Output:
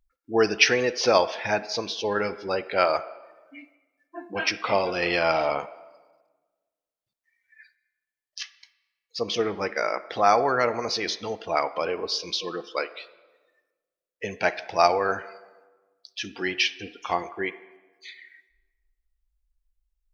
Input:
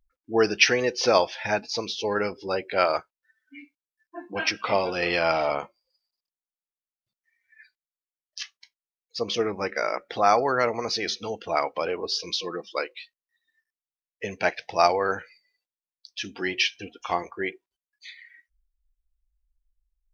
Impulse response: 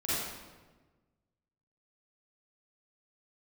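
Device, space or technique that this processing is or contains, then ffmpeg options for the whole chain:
filtered reverb send: -filter_complex "[0:a]asplit=2[a][b];[b]highpass=380,lowpass=3.5k[c];[1:a]atrim=start_sample=2205[d];[c][d]afir=irnorm=-1:irlink=0,volume=-21dB[e];[a][e]amix=inputs=2:normalize=0"

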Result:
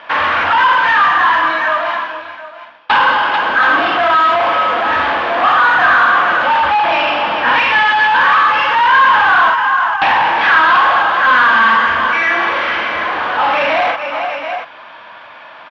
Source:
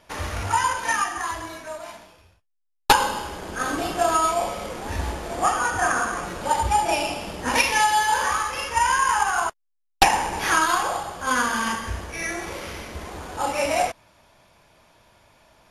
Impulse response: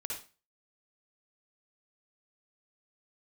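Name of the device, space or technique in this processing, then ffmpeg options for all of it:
overdrive pedal into a guitar cabinet: -filter_complex "[0:a]asettb=1/sr,asplit=3[a][b][c];[a]atrim=end=6.614[d];[b]atrim=start=6.61:end=7.85,asetpts=PTS-STARTPTS,afade=t=in:d=0.004:c=qsin,afade=t=out:st=1.236:d=0.004:c=qsin,lowpass=6.2k[e];[c]atrim=start=7.846[f];[d][e]acrossfade=d=0.004:c1=hsin:c2=qsin[g];[g][f]acrossfade=d=0.004:c1=qsin:c2=hsin,aecho=1:1:44|441|729:0.473|0.178|0.15,asplit=2[h][i];[i]highpass=f=720:p=1,volume=31dB,asoftclip=type=tanh:threshold=-3dB[j];[h][j]amix=inputs=2:normalize=0,lowpass=f=4k:p=1,volume=-6dB,highpass=110,equalizer=f=110:t=q:w=4:g=-6,equalizer=f=180:t=q:w=4:g=-6,equalizer=f=400:t=q:w=4:g=-8,equalizer=f=1.1k:t=q:w=4:g=6,equalizer=f=1.6k:t=q:w=4:g=7,equalizer=f=3.1k:t=q:w=4:g=3,lowpass=f=3.5k:w=0.5412,lowpass=f=3.5k:w=1.3066,volume=-4dB"

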